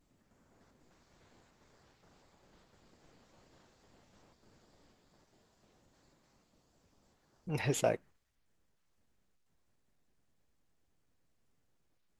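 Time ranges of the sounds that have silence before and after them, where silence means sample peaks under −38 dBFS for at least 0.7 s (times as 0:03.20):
0:07.48–0:07.95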